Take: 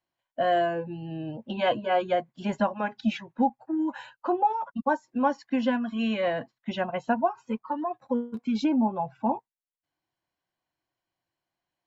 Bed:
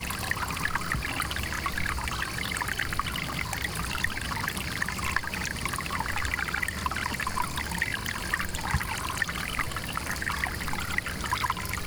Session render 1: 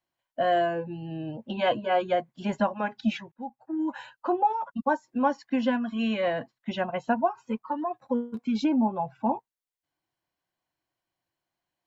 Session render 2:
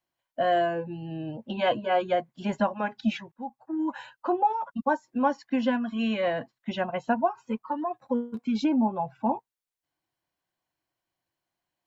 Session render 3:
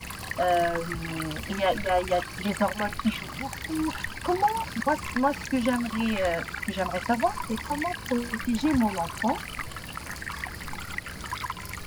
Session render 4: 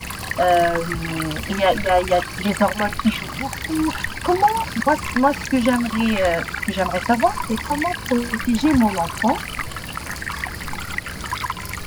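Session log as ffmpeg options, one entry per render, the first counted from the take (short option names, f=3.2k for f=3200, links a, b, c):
-filter_complex "[0:a]asplit=2[a][b];[a]atrim=end=3.32,asetpts=PTS-STARTPTS,afade=t=out:st=3.316:d=0.004:c=hsin[c];[b]atrim=start=3.32,asetpts=PTS-STARTPTS,afade=t=in:d=0.58[d];[c][d]concat=n=2:v=0:a=1"
-filter_complex "[0:a]asettb=1/sr,asplit=3[a][b][c];[a]atrim=end=3.314[d];[b]atrim=start=3.31:end=3.91,asetpts=PTS-STARTPTS,afade=t=in:d=0.004:c=qsin,afade=t=out:st=0.596:d=0.004:c=qsin,equalizer=f=1.1k:t=o:w=0.35:g=7.5[e];[c]atrim=start=3.906[f];[d][e]acrossfade=d=0.004:c1=hsin:c2=qsin[g];[g][f]acrossfade=d=0.004:c1=qsin:c2=hsin"
-filter_complex "[1:a]volume=-5dB[a];[0:a][a]amix=inputs=2:normalize=0"
-af "volume=7.5dB"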